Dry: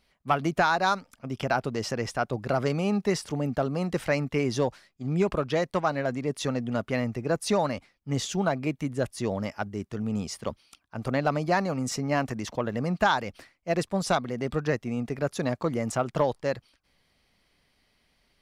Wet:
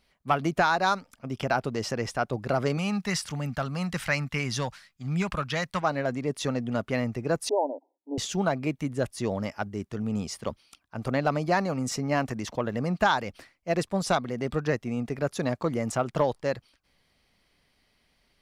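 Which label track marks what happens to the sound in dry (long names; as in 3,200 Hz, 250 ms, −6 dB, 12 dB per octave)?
2.770000	5.820000	drawn EQ curve 180 Hz 0 dB, 370 Hz −12 dB, 1,400 Hz +4 dB
7.490000	8.180000	linear-phase brick-wall band-pass 260–1,000 Hz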